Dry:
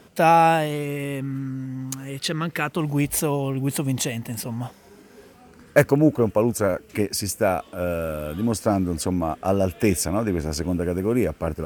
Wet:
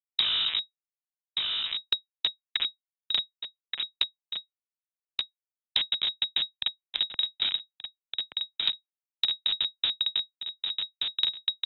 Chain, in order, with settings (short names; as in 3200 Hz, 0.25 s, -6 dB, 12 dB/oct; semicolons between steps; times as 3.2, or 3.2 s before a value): cycle switcher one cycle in 3, muted; HPF 81 Hz 12 dB/oct; bell 2100 Hz +10 dB 1.3 oct; in parallel at 0 dB: compressor 12:1, threshold -33 dBFS, peak gain reduction 25 dB; on the sum: Schmitt trigger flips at -12 dBFS; echo 1.178 s -17 dB; inverted band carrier 3800 Hz; three-band squash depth 100%; gain -3.5 dB